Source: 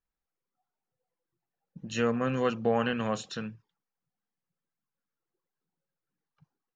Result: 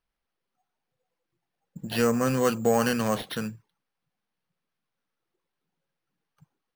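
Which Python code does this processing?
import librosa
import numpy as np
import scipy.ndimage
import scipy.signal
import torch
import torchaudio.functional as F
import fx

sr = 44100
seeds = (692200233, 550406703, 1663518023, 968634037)

p1 = np.clip(10.0 ** (29.0 / 20.0) * x, -1.0, 1.0) / 10.0 ** (29.0 / 20.0)
p2 = x + F.gain(torch.from_numpy(p1), -11.5).numpy()
p3 = np.repeat(p2[::6], 6)[:len(p2)]
y = F.gain(torch.from_numpy(p3), 3.0).numpy()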